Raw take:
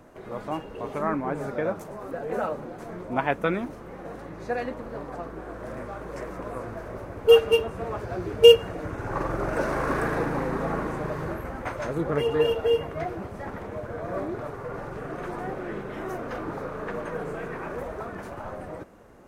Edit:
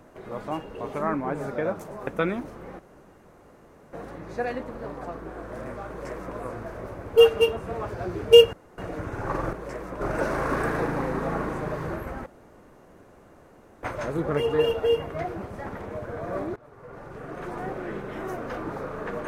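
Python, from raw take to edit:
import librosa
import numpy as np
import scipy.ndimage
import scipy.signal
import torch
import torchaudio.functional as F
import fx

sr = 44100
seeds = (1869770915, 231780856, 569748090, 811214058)

y = fx.edit(x, sr, fx.cut(start_s=2.07, length_s=1.25),
    fx.insert_room_tone(at_s=4.04, length_s=1.14),
    fx.duplicate(start_s=6.0, length_s=0.48, to_s=9.39),
    fx.insert_room_tone(at_s=8.64, length_s=0.25),
    fx.insert_room_tone(at_s=11.64, length_s=1.57),
    fx.fade_in_from(start_s=14.37, length_s=1.07, floor_db=-22.0), tone=tone)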